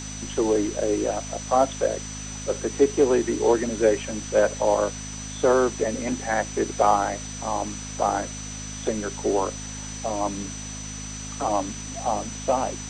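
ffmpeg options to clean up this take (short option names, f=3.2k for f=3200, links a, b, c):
-af "bandreject=f=52.1:t=h:w=4,bandreject=f=104.2:t=h:w=4,bandreject=f=156.3:t=h:w=4,bandreject=f=208.4:t=h:w=4,bandreject=f=260.5:t=h:w=4,bandreject=f=6k:w=30,afwtdn=0.013"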